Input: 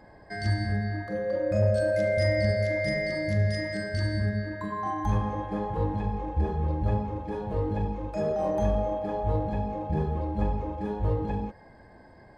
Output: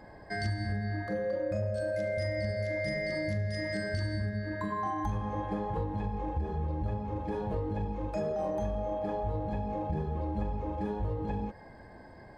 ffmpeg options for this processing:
-af "acompressor=threshold=-31dB:ratio=6,volume=1.5dB"

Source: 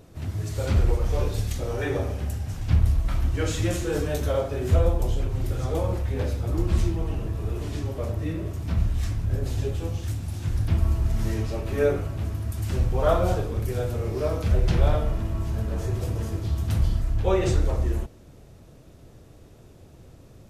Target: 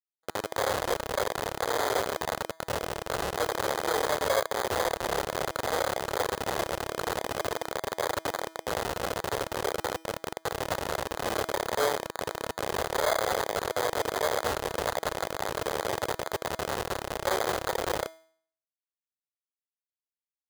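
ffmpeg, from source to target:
-filter_complex "[0:a]aeval=exprs='0.398*(cos(1*acos(clip(val(0)/0.398,-1,1)))-cos(1*PI/2))+0.0501*(cos(4*acos(clip(val(0)/0.398,-1,1)))-cos(4*PI/2))':c=same,equalizer=f=3.6k:t=o:w=0.84:g=-12,asplit=2[a][b];[b]aecho=0:1:87:0.282[c];[a][c]amix=inputs=2:normalize=0,acompressor=threshold=-21dB:ratio=5,acrusher=bits=3:mix=0:aa=0.000001,bandreject=f=323.5:t=h:w=4,bandreject=f=647:t=h:w=4,bandreject=f=970.5:t=h:w=4,bandreject=f=1.294k:t=h:w=4,bandreject=f=1.6175k:t=h:w=4,bandreject=f=1.941k:t=h:w=4,bandreject=f=2.2645k:t=h:w=4,bandreject=f=2.588k:t=h:w=4,bandreject=f=2.9115k:t=h:w=4,bandreject=f=3.235k:t=h:w=4,bandreject=f=3.5585k:t=h:w=4,bandreject=f=3.882k:t=h:w=4,bandreject=f=4.2055k:t=h:w=4,acrusher=samples=16:mix=1:aa=0.000001,highpass=f=170:p=1,lowshelf=f=350:t=q:w=1.5:g=-10,bandreject=f=2.3k:w=9.1"

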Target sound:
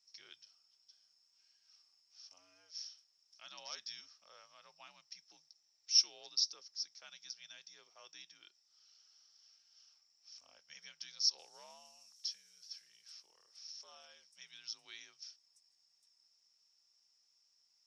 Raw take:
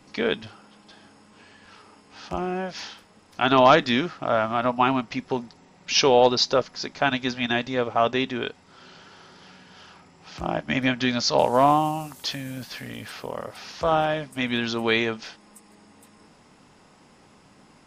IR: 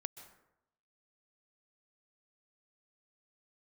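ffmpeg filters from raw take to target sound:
-af "afreqshift=-80,bandpass=f=5.5k:t=q:w=18:csg=0,volume=2dB"

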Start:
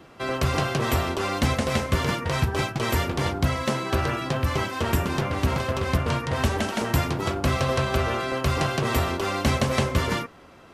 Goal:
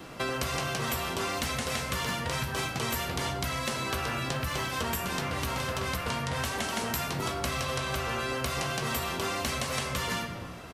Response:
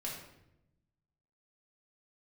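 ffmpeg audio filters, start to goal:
-filter_complex "[0:a]acrossover=split=650|5300[a][b][c];[a]alimiter=limit=-21.5dB:level=0:latency=1:release=442[d];[d][b][c]amix=inputs=3:normalize=0,asplit=2[e][f];[f]adelay=16,volume=-11dB[g];[e][g]amix=inputs=2:normalize=0,asplit=2[h][i];[1:a]atrim=start_sample=2205[j];[i][j]afir=irnorm=-1:irlink=0,volume=-2dB[k];[h][k]amix=inputs=2:normalize=0,asoftclip=type=tanh:threshold=-9.5dB,highshelf=f=4.6k:g=8.5,acompressor=threshold=-29dB:ratio=6"

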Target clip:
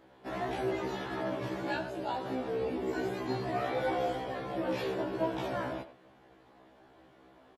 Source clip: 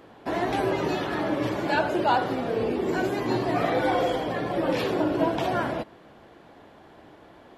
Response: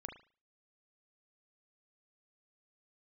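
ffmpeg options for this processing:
-filter_complex "[0:a]asettb=1/sr,asplit=3[a][b][c];[a]atrim=end=1.774[d];[b]atrim=start=1.77:end=2.26,asetpts=PTS-STARTPTS,afade=t=in:d=0.004:c=qsin,afade=t=out:st=0.486:d=0.004:c=qsin,equalizer=f=1.3k:t=o:w=2.9:g=-7[e];[c]atrim=start=2.256[f];[d][e]acrossfade=d=0.004:c1=hsin:c2=qsin[g];[g][f]acrossfade=d=0.004:c1=qsin:c2=hsin,asplit=2[h][i];[i]adelay=90,highpass=300,lowpass=3.4k,asoftclip=type=hard:threshold=-20dB,volume=-12dB[j];[h][j]amix=inputs=2:normalize=0,afftfilt=real='re*1.73*eq(mod(b,3),0)':imag='im*1.73*eq(mod(b,3),0)':win_size=2048:overlap=0.75,volume=-6.5dB"

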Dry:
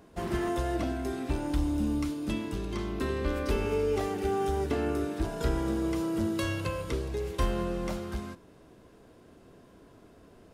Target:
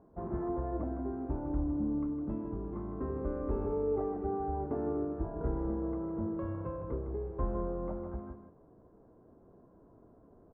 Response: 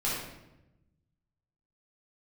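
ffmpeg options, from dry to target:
-af "lowpass=f=1.1k:w=0.5412,lowpass=f=1.1k:w=1.3066,aecho=1:1:157:0.376,volume=-5dB"

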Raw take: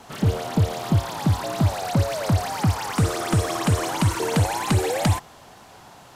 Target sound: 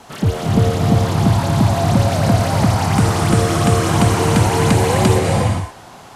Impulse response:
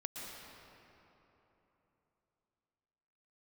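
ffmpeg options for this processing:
-filter_complex "[1:a]atrim=start_sample=2205,afade=t=out:st=0.35:d=0.01,atrim=end_sample=15876,asetrate=24696,aresample=44100[a];[0:a][a]afir=irnorm=-1:irlink=0,volume=5dB"

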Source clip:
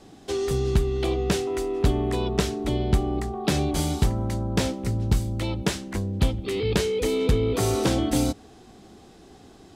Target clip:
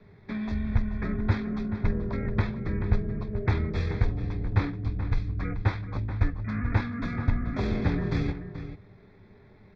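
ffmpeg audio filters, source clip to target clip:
-filter_complex "[0:a]lowpass=5k,equalizer=f=360:t=o:w=0.66:g=-5,aecho=1:1:5.6:0.49,adynamicequalizer=threshold=0.0112:dfrequency=180:dqfactor=3.4:tfrequency=180:tqfactor=3.4:attack=5:release=100:ratio=0.375:range=2:mode=boostabove:tftype=bell,asetrate=24046,aresample=44100,atempo=1.83401,asuperstop=centerf=2900:order=4:qfactor=3.5,asplit=2[a][b];[b]adelay=431.5,volume=-10dB,highshelf=f=4k:g=-9.71[c];[a][c]amix=inputs=2:normalize=0,volume=-3dB"

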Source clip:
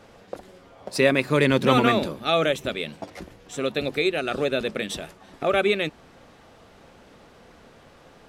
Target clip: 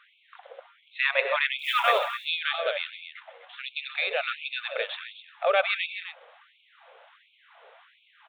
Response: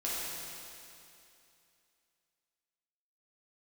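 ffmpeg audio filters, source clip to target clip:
-filter_complex "[0:a]aresample=8000,aresample=44100,asettb=1/sr,asplit=3[a][b][c];[a]atrim=end=1.594[d];[b]atrim=start=1.59:end=2.14,asetpts=PTS-STARTPTS,afade=t=in:d=0.004:c=qsin,afade=t=out:st=0.546:d=0.004:c=qsin,acrusher=bits=8:mode=log:mix=0:aa=0.000001[e];[c]atrim=start=2.136[f];[d][e]acrossfade=d=0.004:c1=hsin:c2=qsin[g];[g][f]acrossfade=d=0.004:c1=qsin:c2=hsin,aecho=1:1:127|180|186|256:0.158|0.112|0.158|0.299,afftfilt=real='re*gte(b*sr/1024,420*pow(2200/420,0.5+0.5*sin(2*PI*1.4*pts/sr)))':imag='im*gte(b*sr/1024,420*pow(2200/420,0.5+0.5*sin(2*PI*1.4*pts/sr)))':win_size=1024:overlap=0.75"

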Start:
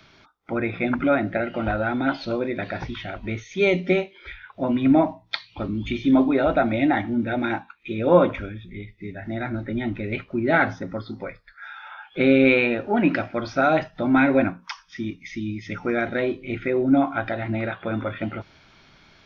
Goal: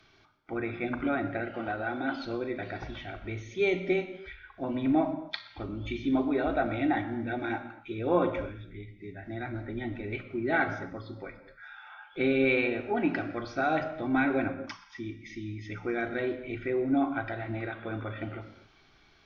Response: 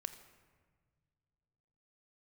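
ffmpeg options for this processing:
-filter_complex "[0:a]asettb=1/sr,asplit=3[a][b][c];[a]atrim=end=1.514[d];[b]atrim=start=1.51:end=2.14,asetpts=PTS-STARTPTS,afade=t=in:d=0.004:c=qsin,afade=t=out:st=0.626:d=0.004:c=qsin,highpass=170[e];[c]atrim=start=2.136[f];[d][e]acrossfade=d=0.004:c1=hsin:c2=qsin[g];[g][f]acrossfade=d=0.004:c1=qsin:c2=hsin[h];[1:a]atrim=start_sample=2205,afade=t=out:st=0.24:d=0.01,atrim=end_sample=11025,asetrate=30870,aresample=44100[i];[h][i]afir=irnorm=-1:irlink=0,volume=-7dB"

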